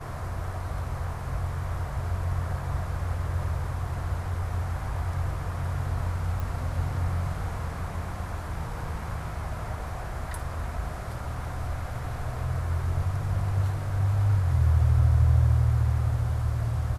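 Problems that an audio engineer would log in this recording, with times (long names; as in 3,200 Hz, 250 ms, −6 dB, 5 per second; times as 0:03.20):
0:06.40: click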